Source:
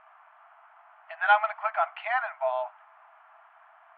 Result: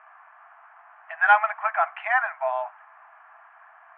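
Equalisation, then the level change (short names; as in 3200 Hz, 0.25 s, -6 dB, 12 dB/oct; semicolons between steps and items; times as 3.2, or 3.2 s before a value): speaker cabinet 500–3000 Hz, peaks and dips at 750 Hz +4 dB, 1100 Hz +5 dB, 1700 Hz +9 dB, 2400 Hz +3 dB; 0.0 dB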